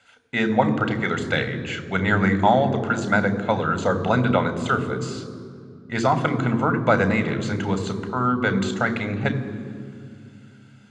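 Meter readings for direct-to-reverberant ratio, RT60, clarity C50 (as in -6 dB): 10.0 dB, 2.3 s, 13.0 dB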